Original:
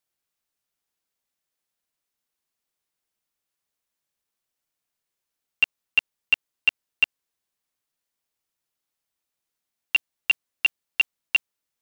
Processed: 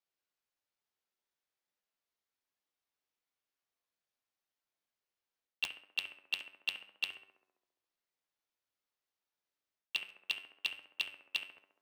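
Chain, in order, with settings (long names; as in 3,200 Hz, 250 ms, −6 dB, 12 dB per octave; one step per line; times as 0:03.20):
running median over 5 samples
bass and treble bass −5 dB, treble +2 dB
reversed playback
downward compressor 5 to 1, threshold −26 dBFS, peak gain reduction 10.5 dB
reversed playback
tuned comb filter 97 Hz, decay 0.41 s, harmonics all, mix 70%
on a send: tape delay 67 ms, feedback 75%, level −8 dB, low-pass 1,700 Hz
on the sum: regular buffer underruns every 0.74 s, samples 512, repeat, from 0:00.46
highs frequency-modulated by the lows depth 0.63 ms
level +1 dB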